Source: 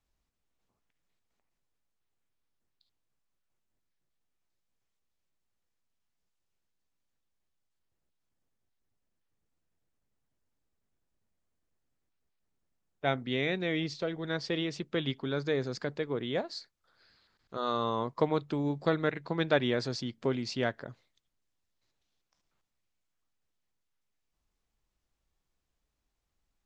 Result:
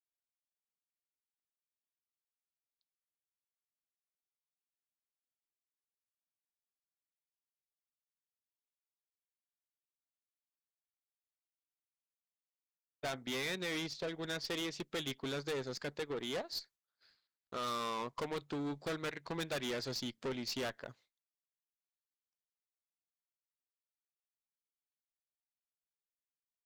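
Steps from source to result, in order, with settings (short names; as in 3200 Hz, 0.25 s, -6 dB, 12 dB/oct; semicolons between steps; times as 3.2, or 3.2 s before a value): expander -57 dBFS; transient shaper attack +4 dB, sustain -8 dB; tilt +2 dB/oct; tube stage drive 36 dB, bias 0.2; gain +1.5 dB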